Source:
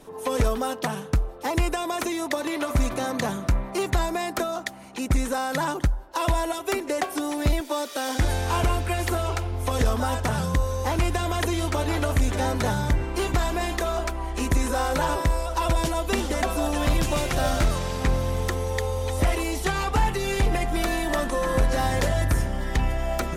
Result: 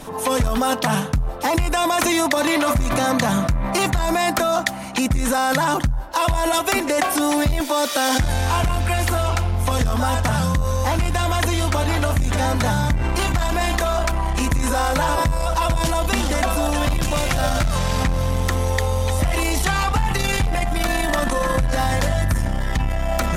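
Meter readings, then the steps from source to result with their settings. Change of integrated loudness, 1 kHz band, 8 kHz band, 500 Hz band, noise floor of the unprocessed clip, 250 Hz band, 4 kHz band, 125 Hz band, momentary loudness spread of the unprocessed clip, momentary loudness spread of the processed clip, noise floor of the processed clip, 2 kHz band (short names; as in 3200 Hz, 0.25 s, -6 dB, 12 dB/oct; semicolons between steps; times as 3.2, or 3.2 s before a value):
+5.5 dB, +6.0 dB, +7.5 dB, +4.0 dB, -38 dBFS, +5.0 dB, +7.0 dB, +5.0 dB, 4 LU, 3 LU, -26 dBFS, +6.5 dB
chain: bell 400 Hz -10.5 dB 0.5 oct; in parallel at +2 dB: negative-ratio compressor -32 dBFS, ratio -1; on the sum: core saturation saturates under 140 Hz; gain +3 dB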